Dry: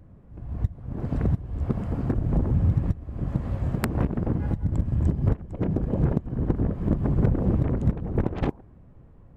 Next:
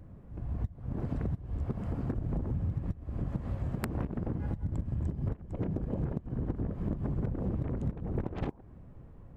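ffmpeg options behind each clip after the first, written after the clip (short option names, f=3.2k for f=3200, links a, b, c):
-af "acompressor=threshold=-31dB:ratio=4"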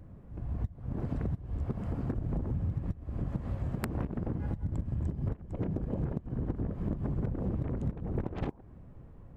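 -af anull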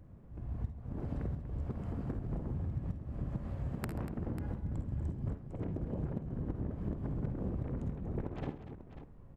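-af "aecho=1:1:52|66|78|134|240|543:0.299|0.211|0.1|0.119|0.251|0.251,volume=-5dB"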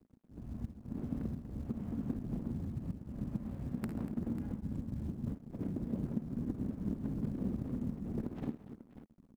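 -af "acrusher=bits=8:mode=log:mix=0:aa=0.000001,aeval=exprs='sgn(val(0))*max(abs(val(0))-0.00266,0)':c=same,equalizer=f=230:w=1.5:g=13.5,volume=-5.5dB"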